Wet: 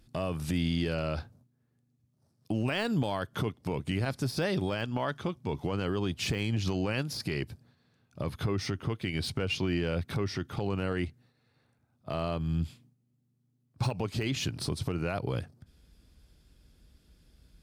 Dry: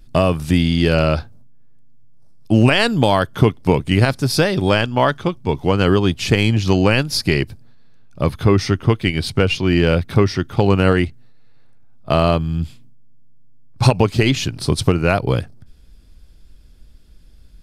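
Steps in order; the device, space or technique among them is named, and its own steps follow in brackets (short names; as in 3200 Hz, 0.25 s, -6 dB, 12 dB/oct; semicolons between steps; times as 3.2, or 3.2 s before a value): podcast mastering chain (HPF 61 Hz 12 dB/oct; de-esser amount 50%; compressor 2.5:1, threshold -18 dBFS, peak gain reduction 8 dB; limiter -13.5 dBFS, peak gain reduction 9 dB; gain -6.5 dB; MP3 112 kbps 44100 Hz)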